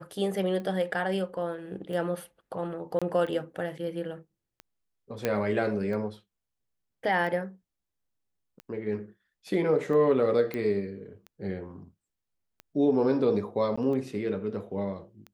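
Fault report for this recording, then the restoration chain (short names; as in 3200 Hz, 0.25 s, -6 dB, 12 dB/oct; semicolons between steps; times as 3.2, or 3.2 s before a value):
tick 45 rpm -28 dBFS
2.99–3.02 gap 26 ms
5.25 pop -13 dBFS
10.54 pop -20 dBFS
13.76–13.78 gap 15 ms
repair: de-click; interpolate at 2.99, 26 ms; interpolate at 13.76, 15 ms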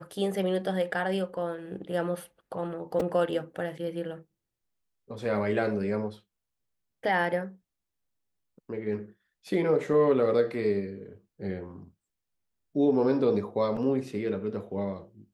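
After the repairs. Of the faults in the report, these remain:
none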